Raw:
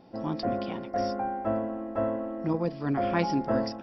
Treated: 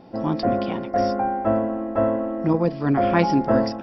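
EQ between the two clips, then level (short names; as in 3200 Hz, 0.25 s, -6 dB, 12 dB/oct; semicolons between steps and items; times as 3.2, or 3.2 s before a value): high shelf 4600 Hz -6.5 dB; +8.0 dB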